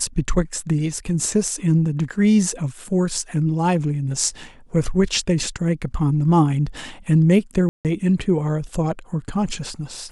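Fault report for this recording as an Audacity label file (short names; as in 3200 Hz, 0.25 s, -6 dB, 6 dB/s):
7.690000	7.850000	gap 0.158 s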